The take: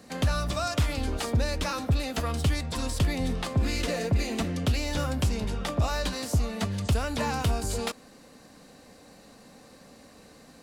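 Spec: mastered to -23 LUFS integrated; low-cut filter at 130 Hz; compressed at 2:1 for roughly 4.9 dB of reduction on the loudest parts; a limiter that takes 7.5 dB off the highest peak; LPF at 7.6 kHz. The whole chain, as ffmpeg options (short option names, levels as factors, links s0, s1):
-af "highpass=130,lowpass=7600,acompressor=threshold=0.0251:ratio=2,volume=4.47,alimiter=limit=0.224:level=0:latency=1"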